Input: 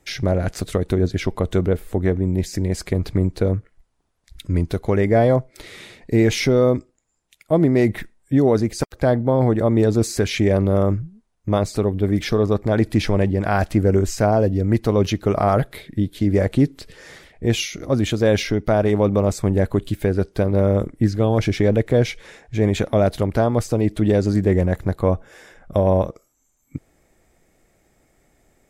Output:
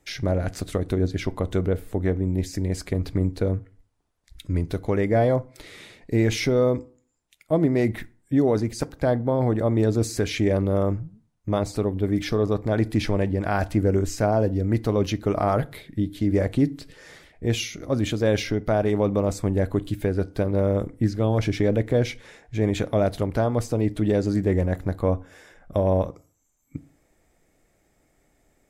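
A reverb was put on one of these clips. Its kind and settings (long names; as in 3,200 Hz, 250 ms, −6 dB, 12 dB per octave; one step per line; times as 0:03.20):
feedback delay network reverb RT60 0.41 s, low-frequency decay 1.2×, high-frequency decay 0.6×, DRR 15.5 dB
level −4.5 dB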